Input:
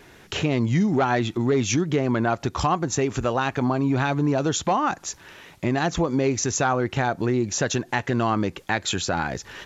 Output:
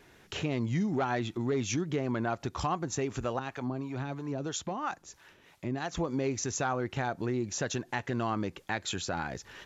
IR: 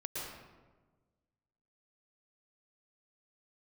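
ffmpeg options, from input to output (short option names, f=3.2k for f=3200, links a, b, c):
-filter_complex "[0:a]asettb=1/sr,asplit=3[a][b][c];[a]atrim=end=3.394[d];[b]atrim=start=3.39:end=5.94,asetpts=PTS-STARTPTS,afade=t=in:d=0.004:c=qsin,afade=t=out:st=2.546:d=0.004:c=qsin,acrossover=split=500[e][f];[e]aeval=exprs='val(0)*(1-0.7/2+0.7/2*cos(2*PI*3*n/s))':c=same[g];[f]aeval=exprs='val(0)*(1-0.7/2-0.7/2*cos(2*PI*3*n/s))':c=same[h];[g][h]amix=inputs=2:normalize=0[i];[c]atrim=start=5.936[j];[d][i]acrossfade=d=0.004:c1=hsin:c2=qsin[k];[k][j]acrossfade=d=0.004:c1=qsin:c2=hsin,volume=-9dB"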